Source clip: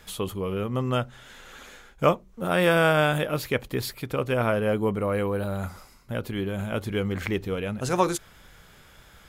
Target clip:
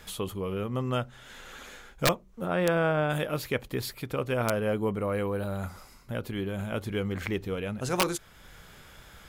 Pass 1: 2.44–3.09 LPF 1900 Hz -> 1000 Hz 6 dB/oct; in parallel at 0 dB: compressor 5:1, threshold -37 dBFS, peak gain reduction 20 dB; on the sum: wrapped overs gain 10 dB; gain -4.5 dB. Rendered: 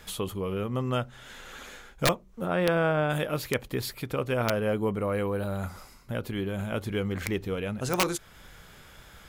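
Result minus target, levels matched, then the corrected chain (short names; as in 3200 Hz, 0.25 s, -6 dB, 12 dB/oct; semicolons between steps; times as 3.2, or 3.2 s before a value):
compressor: peak gain reduction -6.5 dB
2.44–3.09 LPF 1900 Hz -> 1000 Hz 6 dB/oct; in parallel at 0 dB: compressor 5:1, threshold -45 dBFS, peak gain reduction 26.5 dB; on the sum: wrapped overs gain 10 dB; gain -4.5 dB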